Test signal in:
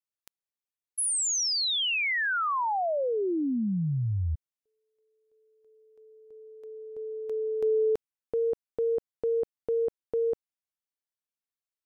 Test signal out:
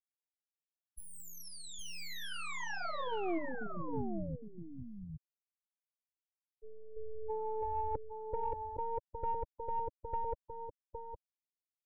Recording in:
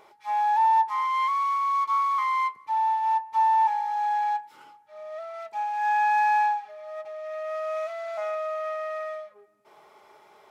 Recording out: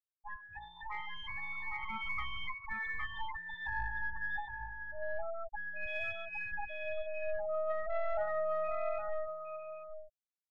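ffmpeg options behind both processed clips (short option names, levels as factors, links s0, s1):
-filter_complex "[0:a]aeval=exprs='if(lt(val(0),0),0.251*val(0),val(0))':c=same,afftfilt=real='re*gte(hypot(re,im),0.0355)':imag='im*gte(hypot(re,im),0.0355)':win_size=1024:overlap=0.75,equalizer=f=390:w=1.9:g=-12.5,afftfilt=real='re*lt(hypot(re,im),0.141)':imag='im*lt(hypot(re,im),0.141)':win_size=1024:overlap=0.75,asplit=2[s0][s1];[s1]aecho=0:1:812:0.501[s2];[s0][s2]amix=inputs=2:normalize=0,aeval=exprs='0.0447*(cos(1*acos(clip(val(0)/0.0447,-1,1)))-cos(1*PI/2))+0.00355*(cos(2*acos(clip(val(0)/0.0447,-1,1)))-cos(2*PI/2))+0.00178*(cos(5*acos(clip(val(0)/0.0447,-1,1)))-cos(5*PI/2))+0.001*(cos(7*acos(clip(val(0)/0.0447,-1,1)))-cos(7*PI/2))':c=same,dynaudnorm=f=190:g=21:m=1.78,aphaser=in_gain=1:out_gain=1:delay=2.1:decay=0.23:speed=1.5:type=triangular,highshelf=f=2400:g=-11,asoftclip=type=tanh:threshold=0.0794"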